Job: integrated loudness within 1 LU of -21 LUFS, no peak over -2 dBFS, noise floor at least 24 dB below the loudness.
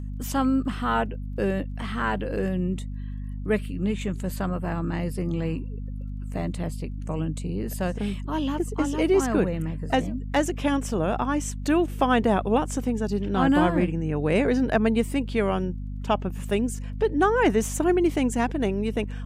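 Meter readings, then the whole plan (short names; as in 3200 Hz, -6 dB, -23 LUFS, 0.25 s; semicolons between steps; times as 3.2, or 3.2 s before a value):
ticks 19/s; hum 50 Hz; harmonics up to 250 Hz; hum level -30 dBFS; loudness -25.5 LUFS; peak -7.5 dBFS; loudness target -21.0 LUFS
-> de-click; de-hum 50 Hz, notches 5; gain +4.5 dB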